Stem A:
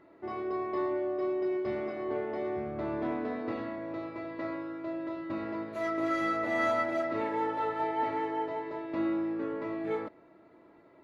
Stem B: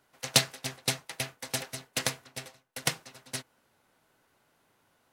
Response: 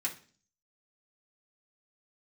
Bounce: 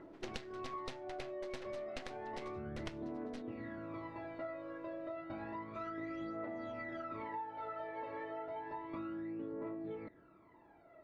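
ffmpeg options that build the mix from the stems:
-filter_complex "[0:a]aphaser=in_gain=1:out_gain=1:delay=1.9:decay=0.71:speed=0.31:type=triangular,volume=-4.5dB[a];[1:a]highpass=f=140:w=0.5412,highpass=f=140:w=1.3066,alimiter=limit=-9dB:level=0:latency=1:release=332,aeval=exprs='max(val(0),0)':c=same,volume=1.5dB[b];[a][b]amix=inputs=2:normalize=0,lowpass=5.5k,highshelf=f=4.1k:g=-10.5,acompressor=threshold=-40dB:ratio=12"

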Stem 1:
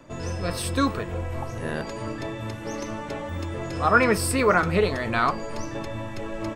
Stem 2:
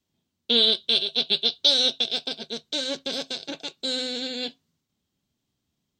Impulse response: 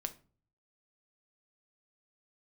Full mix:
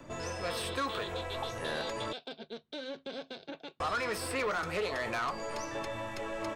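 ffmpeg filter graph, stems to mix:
-filter_complex "[0:a]volume=-0.5dB,asplit=3[a][b][c];[a]atrim=end=2.13,asetpts=PTS-STARTPTS,afade=t=out:st=2.126:d=0.004:c=hsin[d];[b]atrim=start=2.13:end=3.8,asetpts=PTS-STARTPTS,volume=0[e];[c]atrim=start=3.8,asetpts=PTS-STARTPTS,afade=t=in:d=0.004:c=hsin[f];[d][e][f]concat=n=3:v=0:a=1[g];[1:a]lowpass=2k,alimiter=limit=-23.5dB:level=0:latency=1:release=51,volume=-5dB[h];[g][h]amix=inputs=2:normalize=0,acrossover=split=430|3600[i][j][k];[i]acompressor=threshold=-45dB:ratio=4[l];[j]acompressor=threshold=-27dB:ratio=4[m];[k]acompressor=threshold=-43dB:ratio=4[n];[l][m][n]amix=inputs=3:normalize=0,asoftclip=type=tanh:threshold=-27.5dB"

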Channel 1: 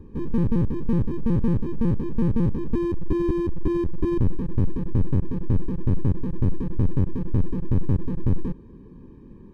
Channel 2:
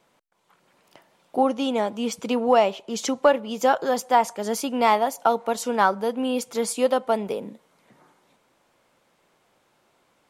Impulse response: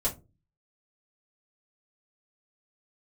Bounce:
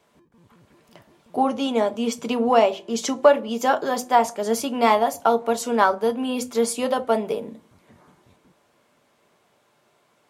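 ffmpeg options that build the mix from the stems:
-filter_complex "[0:a]lowshelf=f=480:g=-12,alimiter=level_in=4dB:limit=-24dB:level=0:latency=1,volume=-4dB,volume=-19.5dB[a];[1:a]volume=-1dB,asplit=2[b][c];[c]volume=-11.5dB[d];[2:a]atrim=start_sample=2205[e];[d][e]afir=irnorm=-1:irlink=0[f];[a][b][f]amix=inputs=3:normalize=0,highpass=83"

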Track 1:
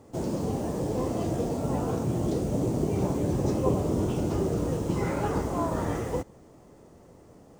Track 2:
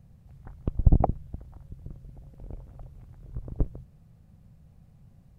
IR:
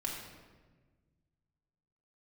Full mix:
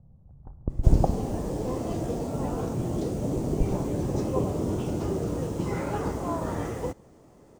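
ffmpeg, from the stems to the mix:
-filter_complex "[0:a]adelay=700,volume=-1.5dB[a];[1:a]lowpass=f=1k:w=0.5412,lowpass=f=1k:w=1.3066,volume=-2dB,asplit=2[b][c];[c]volume=-11dB[d];[2:a]atrim=start_sample=2205[e];[d][e]afir=irnorm=-1:irlink=0[f];[a][b][f]amix=inputs=3:normalize=0"

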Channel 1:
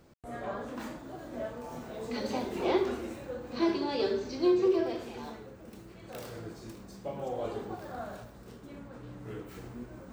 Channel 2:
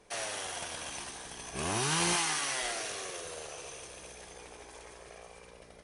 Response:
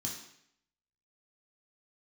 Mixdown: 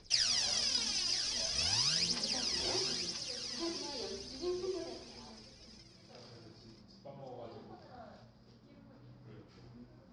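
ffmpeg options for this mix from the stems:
-filter_complex "[0:a]lowpass=f=2.8k:p=1,bandreject=f=54.96:t=h:w=4,bandreject=f=109.92:t=h:w=4,volume=-14dB,asplit=2[a][b];[b]volume=-11dB[c];[1:a]equalizer=f=600:w=0.39:g=-14,acompressor=threshold=-34dB:ratio=6,aphaser=in_gain=1:out_gain=1:delay=2.9:decay=0.77:speed=0.46:type=triangular,volume=-1.5dB,afade=t=out:st=1.42:d=0.75:silence=0.375837,asplit=2[d][e];[e]volume=-7dB[f];[2:a]atrim=start_sample=2205[g];[c][g]afir=irnorm=-1:irlink=0[h];[f]aecho=0:1:983:1[i];[a][d][h][i]amix=inputs=4:normalize=0,lowpass=f=5k:t=q:w=9.6"

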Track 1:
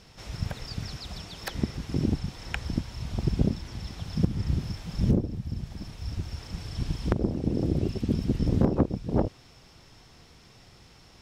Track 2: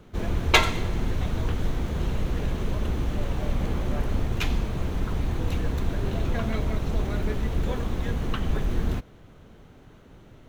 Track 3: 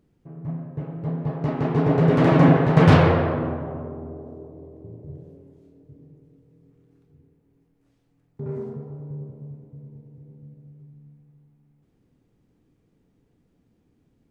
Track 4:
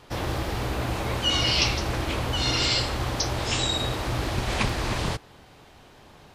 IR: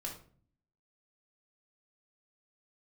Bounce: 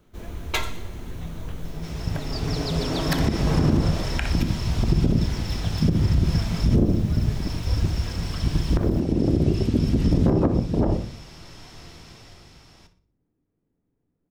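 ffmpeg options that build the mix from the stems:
-filter_complex "[0:a]dynaudnorm=f=150:g=13:m=14dB,adelay=1650,volume=-1.5dB,asplit=3[a][b][c];[b]volume=-3.5dB[d];[c]volume=-12.5dB[e];[1:a]highshelf=f=6.9k:g=11,volume=-11.5dB,asplit=2[f][g];[g]volume=-6dB[h];[2:a]lowpass=1.9k,adelay=700,volume=-12dB,asplit=2[i][j];[j]volume=-9dB[k];[4:a]atrim=start_sample=2205[l];[d][h][k]amix=inputs=3:normalize=0[m];[m][l]afir=irnorm=-1:irlink=0[n];[e]aecho=0:1:61|122|183|244|305:1|0.37|0.137|0.0507|0.0187[o];[a][f][i][n][o]amix=inputs=5:normalize=0,alimiter=limit=-10.5dB:level=0:latency=1:release=72"

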